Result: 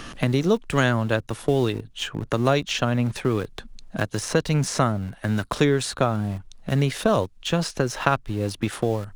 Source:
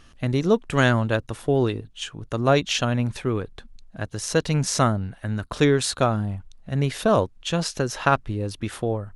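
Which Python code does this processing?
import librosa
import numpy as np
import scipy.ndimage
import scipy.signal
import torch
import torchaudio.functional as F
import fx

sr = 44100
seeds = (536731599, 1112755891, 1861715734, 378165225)

p1 = fx.peak_eq(x, sr, hz=74.0, db=-7.0, octaves=0.27)
p2 = np.where(np.abs(p1) >= 10.0 ** (-30.5 / 20.0), p1, 0.0)
p3 = p1 + F.gain(torch.from_numpy(p2), -8.5).numpy()
p4 = fx.band_squash(p3, sr, depth_pct=70)
y = F.gain(torch.from_numpy(p4), -3.0).numpy()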